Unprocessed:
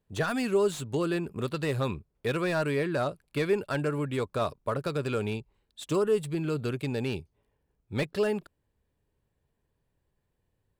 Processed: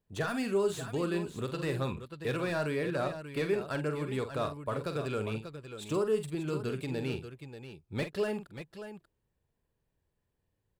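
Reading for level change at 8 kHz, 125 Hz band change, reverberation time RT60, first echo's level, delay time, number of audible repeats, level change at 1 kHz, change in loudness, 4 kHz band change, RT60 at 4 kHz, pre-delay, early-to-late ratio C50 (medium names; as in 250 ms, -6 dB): -3.5 dB, -3.5 dB, no reverb, -9.0 dB, 46 ms, 2, -3.5 dB, -3.5 dB, -3.5 dB, no reverb, no reverb, no reverb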